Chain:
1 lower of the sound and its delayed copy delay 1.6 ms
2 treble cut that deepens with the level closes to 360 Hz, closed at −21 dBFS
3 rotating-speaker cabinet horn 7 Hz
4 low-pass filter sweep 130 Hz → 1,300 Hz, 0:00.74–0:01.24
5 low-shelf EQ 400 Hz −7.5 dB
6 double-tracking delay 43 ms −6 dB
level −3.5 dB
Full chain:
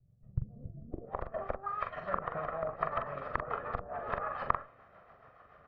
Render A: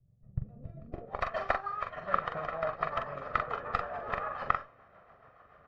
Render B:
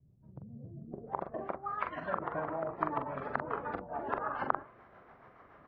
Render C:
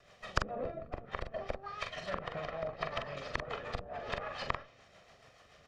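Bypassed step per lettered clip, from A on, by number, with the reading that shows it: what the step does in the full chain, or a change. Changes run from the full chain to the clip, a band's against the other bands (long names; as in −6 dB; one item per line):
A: 2, 2 kHz band +4.5 dB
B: 1, 250 Hz band +5.5 dB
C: 4, 1 kHz band −4.5 dB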